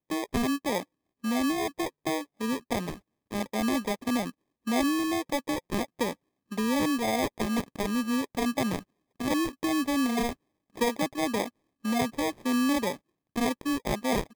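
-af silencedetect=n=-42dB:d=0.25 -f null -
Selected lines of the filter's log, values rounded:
silence_start: 0.83
silence_end: 1.24 | silence_duration: 0.41
silence_start: 2.97
silence_end: 3.31 | silence_duration: 0.34
silence_start: 4.30
silence_end: 4.67 | silence_duration: 0.37
silence_start: 6.13
silence_end: 6.51 | silence_duration: 0.38
silence_start: 8.81
silence_end: 9.20 | silence_duration: 0.39
silence_start: 10.33
silence_end: 10.76 | silence_duration: 0.42
silence_start: 11.49
silence_end: 11.85 | silence_duration: 0.36
silence_start: 12.97
silence_end: 13.36 | silence_duration: 0.39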